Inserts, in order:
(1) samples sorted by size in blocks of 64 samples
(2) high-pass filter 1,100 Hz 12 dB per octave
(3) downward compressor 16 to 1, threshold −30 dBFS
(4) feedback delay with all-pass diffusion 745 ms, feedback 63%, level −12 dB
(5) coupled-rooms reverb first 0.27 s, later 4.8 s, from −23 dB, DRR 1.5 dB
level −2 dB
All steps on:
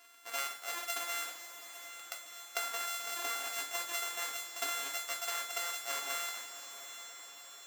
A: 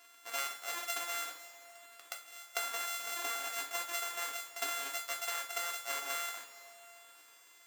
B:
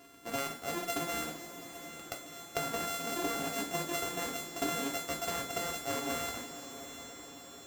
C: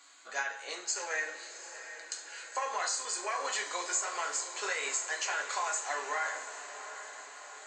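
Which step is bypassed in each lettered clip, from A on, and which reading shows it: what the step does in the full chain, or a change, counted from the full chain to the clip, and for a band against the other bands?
4, change in momentary loudness spread +7 LU
2, 250 Hz band +22.5 dB
1, change in crest factor −7.0 dB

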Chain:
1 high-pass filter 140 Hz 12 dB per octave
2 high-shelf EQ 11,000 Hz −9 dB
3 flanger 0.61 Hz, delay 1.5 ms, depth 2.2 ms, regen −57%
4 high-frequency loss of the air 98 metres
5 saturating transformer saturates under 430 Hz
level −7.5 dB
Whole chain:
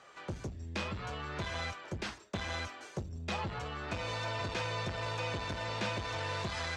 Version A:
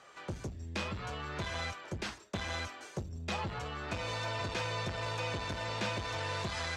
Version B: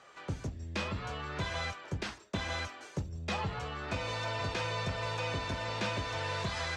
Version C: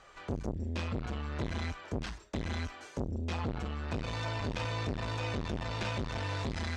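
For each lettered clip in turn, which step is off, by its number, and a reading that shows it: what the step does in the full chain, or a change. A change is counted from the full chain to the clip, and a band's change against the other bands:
2, 8 kHz band +2.0 dB
5, change in integrated loudness +1.5 LU
1, 250 Hz band +7.5 dB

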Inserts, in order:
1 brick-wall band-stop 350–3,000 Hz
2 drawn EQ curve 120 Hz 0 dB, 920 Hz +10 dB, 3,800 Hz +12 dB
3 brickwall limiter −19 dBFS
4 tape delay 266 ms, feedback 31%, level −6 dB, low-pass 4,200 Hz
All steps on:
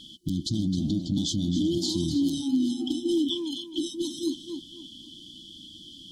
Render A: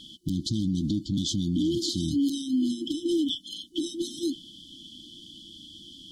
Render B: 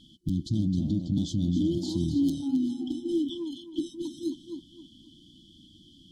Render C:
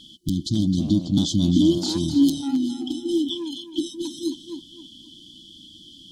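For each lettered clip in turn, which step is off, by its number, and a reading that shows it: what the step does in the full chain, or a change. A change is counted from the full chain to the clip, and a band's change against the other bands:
4, change in crest factor −2.0 dB
2, change in momentary loudness spread −8 LU
3, average gain reduction 2.0 dB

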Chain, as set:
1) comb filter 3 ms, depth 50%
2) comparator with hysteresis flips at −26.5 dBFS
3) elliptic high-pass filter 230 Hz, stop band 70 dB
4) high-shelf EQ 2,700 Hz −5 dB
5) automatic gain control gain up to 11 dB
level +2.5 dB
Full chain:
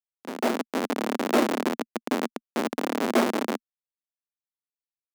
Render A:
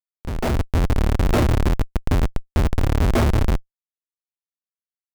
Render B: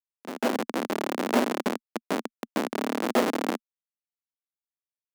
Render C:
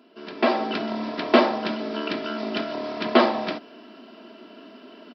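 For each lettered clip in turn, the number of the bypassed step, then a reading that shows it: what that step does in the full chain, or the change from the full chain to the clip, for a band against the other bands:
3, 125 Hz band +25.5 dB
1, change in integrated loudness −1.5 LU
2, change in crest factor +1.5 dB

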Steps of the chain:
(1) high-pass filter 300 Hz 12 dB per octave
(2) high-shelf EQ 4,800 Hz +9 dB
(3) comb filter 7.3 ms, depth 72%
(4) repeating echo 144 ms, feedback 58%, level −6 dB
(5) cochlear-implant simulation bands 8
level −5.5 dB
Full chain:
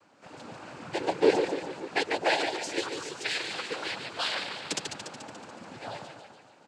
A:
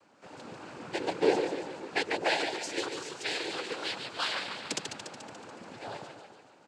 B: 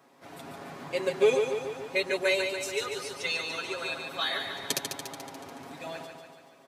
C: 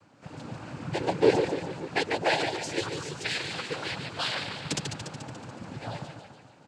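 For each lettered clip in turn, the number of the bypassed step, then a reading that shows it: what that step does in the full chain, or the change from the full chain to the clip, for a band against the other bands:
3, change in integrated loudness −2.5 LU
5, 250 Hz band −5.0 dB
1, change in momentary loudness spread −2 LU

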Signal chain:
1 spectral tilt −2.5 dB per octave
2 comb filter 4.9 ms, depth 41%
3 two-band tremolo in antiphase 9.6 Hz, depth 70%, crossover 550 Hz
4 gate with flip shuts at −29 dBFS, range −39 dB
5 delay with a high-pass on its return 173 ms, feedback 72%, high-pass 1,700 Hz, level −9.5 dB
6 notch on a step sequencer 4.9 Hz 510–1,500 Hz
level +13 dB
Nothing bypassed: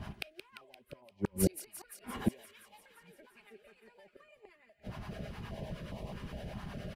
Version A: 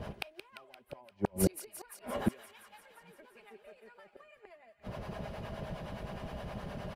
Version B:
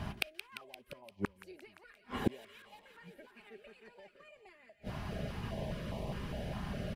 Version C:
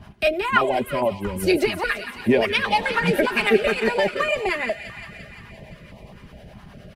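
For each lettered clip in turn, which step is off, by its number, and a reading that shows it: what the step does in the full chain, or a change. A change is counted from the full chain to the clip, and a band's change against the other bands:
6, change in momentary loudness spread −2 LU
3, change in momentary loudness spread −7 LU
4, change in momentary loudness spread −14 LU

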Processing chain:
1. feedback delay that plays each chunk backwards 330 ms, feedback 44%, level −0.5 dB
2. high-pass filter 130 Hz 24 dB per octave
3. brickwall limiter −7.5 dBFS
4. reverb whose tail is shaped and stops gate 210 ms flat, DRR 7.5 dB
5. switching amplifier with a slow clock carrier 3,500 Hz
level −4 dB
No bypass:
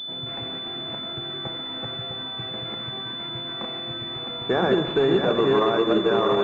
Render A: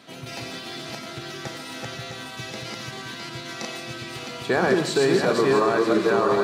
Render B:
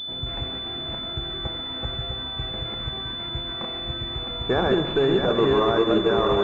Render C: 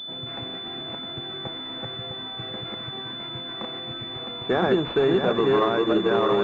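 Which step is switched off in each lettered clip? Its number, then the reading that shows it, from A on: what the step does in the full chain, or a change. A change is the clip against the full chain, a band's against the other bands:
5, 4 kHz band −7.0 dB
2, 125 Hz band +3.5 dB
4, change in momentary loudness spread +1 LU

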